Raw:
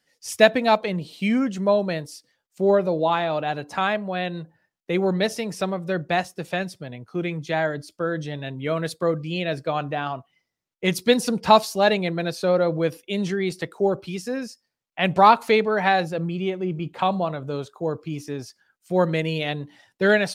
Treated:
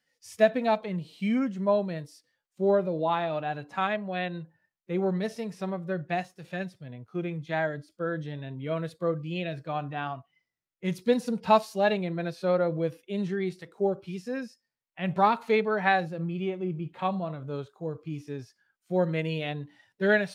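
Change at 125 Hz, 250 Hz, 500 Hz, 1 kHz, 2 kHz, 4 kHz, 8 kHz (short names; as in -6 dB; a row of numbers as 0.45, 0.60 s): -4.5 dB, -5.0 dB, -5.5 dB, -7.0 dB, -6.5 dB, -11.5 dB, under -10 dB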